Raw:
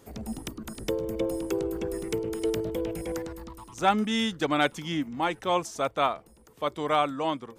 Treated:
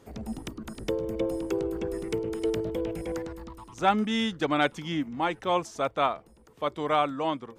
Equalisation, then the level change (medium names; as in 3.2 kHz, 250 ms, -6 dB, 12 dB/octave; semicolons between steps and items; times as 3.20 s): treble shelf 7.2 kHz -10.5 dB; 0.0 dB